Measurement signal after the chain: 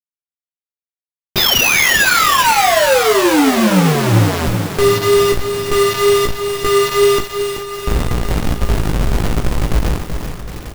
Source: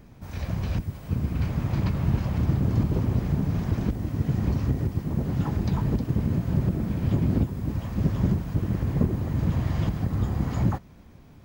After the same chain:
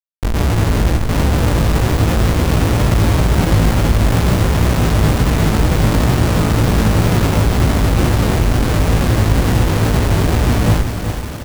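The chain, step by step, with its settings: RIAA curve playback; hum notches 60/120/180/240/300 Hz; dynamic bell 300 Hz, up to +6 dB, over -29 dBFS, Q 0.96; level rider gain up to 8 dB; peak limiter -7 dBFS; Schmitt trigger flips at -22 dBFS; chorus 2.1 Hz, delay 16.5 ms, depth 2.1 ms; sample-rate reducer 8.6 kHz, jitter 0%; doubling 37 ms -13.5 dB; echo that smears into a reverb 793 ms, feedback 46%, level -13.5 dB; bit-crushed delay 380 ms, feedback 55%, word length 5-bit, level -7 dB; trim +4.5 dB

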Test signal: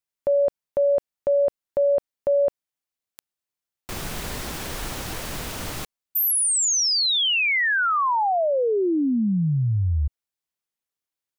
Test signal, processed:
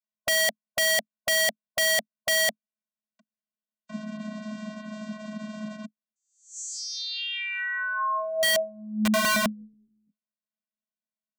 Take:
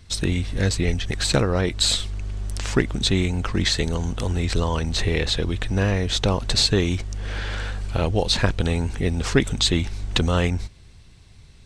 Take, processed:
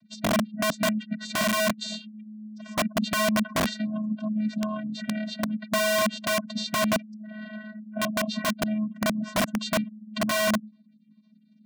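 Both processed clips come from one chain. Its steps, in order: spectral gate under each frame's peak -25 dB strong; vocoder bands 16, square 214 Hz; integer overflow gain 19 dB

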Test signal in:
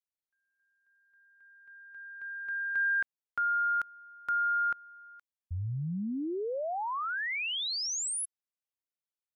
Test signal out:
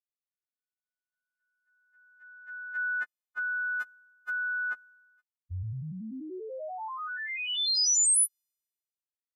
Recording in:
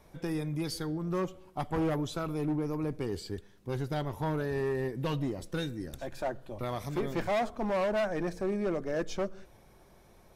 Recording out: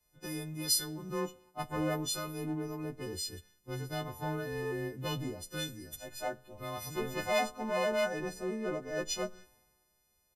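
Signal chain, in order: partials quantised in pitch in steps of 3 st; resampled via 32 kHz; three bands expanded up and down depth 70%; trim -4 dB

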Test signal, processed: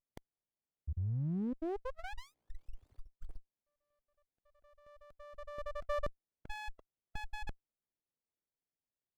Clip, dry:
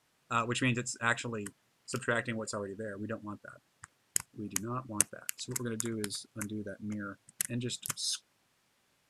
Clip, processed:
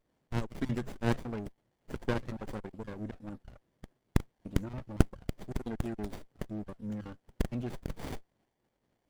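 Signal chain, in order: random holes in the spectrogram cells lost 39%; sliding maximum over 33 samples; trim +1 dB

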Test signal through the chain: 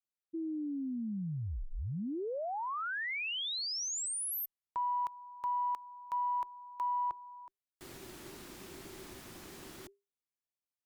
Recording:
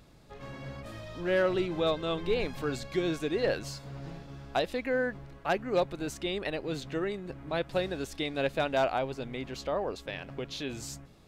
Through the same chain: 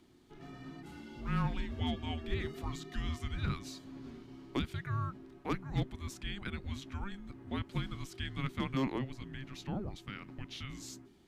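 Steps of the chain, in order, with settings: frequency shift -400 Hz; Chebyshev shaper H 2 -35 dB, 3 -26 dB, 4 -41 dB, 5 -45 dB, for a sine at -15 dBFS; trim -5 dB

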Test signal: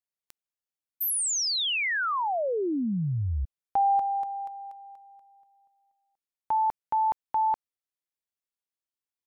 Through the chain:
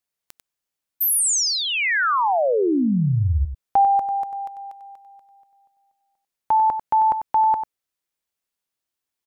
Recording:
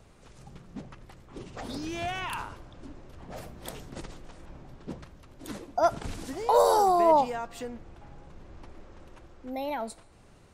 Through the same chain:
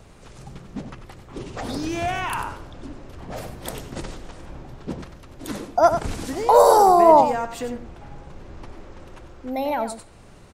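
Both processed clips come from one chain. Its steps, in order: dynamic bell 3.4 kHz, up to -6 dB, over -48 dBFS, Q 1.4; on a send: delay 95 ms -9.5 dB; on the sum: trim +8 dB

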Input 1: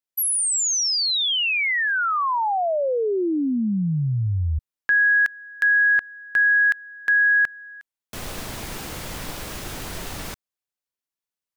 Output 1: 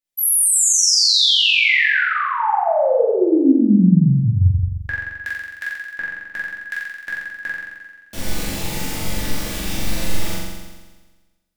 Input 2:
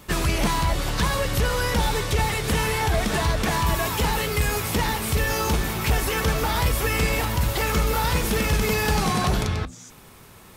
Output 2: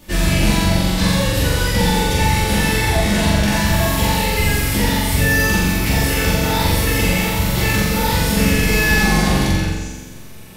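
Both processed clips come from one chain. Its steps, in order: peaking EQ 1.2 kHz -8.5 dB 0.87 oct; on a send: flutter echo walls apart 7.5 m, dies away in 1.3 s; on the sum: simulated room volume 240 m³, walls furnished, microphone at 2.5 m; trim -1 dB

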